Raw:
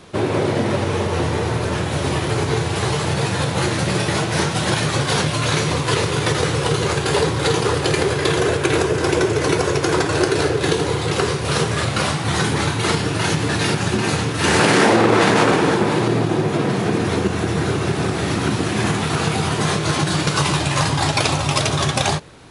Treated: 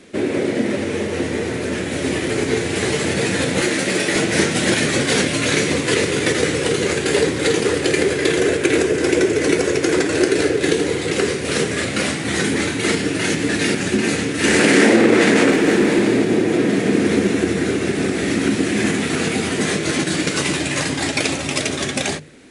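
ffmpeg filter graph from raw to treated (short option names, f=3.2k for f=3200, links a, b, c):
-filter_complex "[0:a]asettb=1/sr,asplit=3[a][b][c];[a]atrim=end=3.614[d];[b]atrim=start=3.61:end=4.16,asetpts=PTS-STARTPTS,afade=t=in:d=0.004:c=qsin,afade=t=out:st=0.546:d=0.004:c=qsin,highpass=f=280:p=1,asoftclip=type=hard:threshold=-14.5dB[e];[c]atrim=start=4.156[f];[d][e]acrossfade=d=0.004:c1=hsin:c2=qsin[g];[g][f]acrossfade=d=0.004:c1=qsin:c2=hsin,asettb=1/sr,asplit=3[h][i][j];[h]atrim=end=15.504[k];[i]atrim=start=15.5:end=17.53,asetpts=PTS-STARTPTS,afade=t=in:d=0.004:c=qsin,afade=t=out:st=2.026:d=0.004:c=qsin,volume=12dB,asoftclip=hard,volume=-12dB,aecho=1:1:168:0.596,atrim=end_sample=89523[l];[j]atrim=start=17.526[m];[k][l]acrossfade=d=0.004:c1=hsin:c2=qsin[n];[n][m]acrossfade=d=0.004:c1=qsin:c2=hsin,bandreject=f=50:t=h:w=6,bandreject=f=100:t=h:w=6,bandreject=f=150:t=h:w=6,dynaudnorm=f=590:g=9:m=11.5dB,equalizer=f=125:t=o:w=1:g=-6,equalizer=f=250:t=o:w=1:g=12,equalizer=f=500:t=o:w=1:g=5,equalizer=f=1k:t=o:w=1:g=-8,equalizer=f=2k:t=o:w=1:g=10,equalizer=f=8k:t=o:w=1:g=8,volume=-7dB"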